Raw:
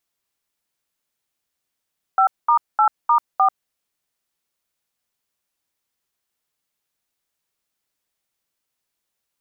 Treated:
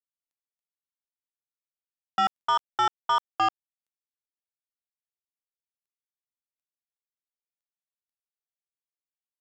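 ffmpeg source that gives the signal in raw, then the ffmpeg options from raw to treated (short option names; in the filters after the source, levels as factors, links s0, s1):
-f lavfi -i "aevalsrc='0.188*clip(min(mod(t,0.304),0.091-mod(t,0.304))/0.002,0,1)*(eq(floor(t/0.304),0)*(sin(2*PI*770*mod(t,0.304))+sin(2*PI*1336*mod(t,0.304)))+eq(floor(t/0.304),1)*(sin(2*PI*941*mod(t,0.304))+sin(2*PI*1209*mod(t,0.304)))+eq(floor(t/0.304),2)*(sin(2*PI*852*mod(t,0.304))+sin(2*PI*1336*mod(t,0.304)))+eq(floor(t/0.304),3)*(sin(2*PI*941*mod(t,0.304))+sin(2*PI*1209*mod(t,0.304)))+eq(floor(t/0.304),4)*(sin(2*PI*770*mod(t,0.304))+sin(2*PI*1209*mod(t,0.304))))':d=1.52:s=44100"
-af "aresample=16000,asoftclip=type=tanh:threshold=0.112,aresample=44100,acrusher=bits=11:mix=0:aa=0.000001"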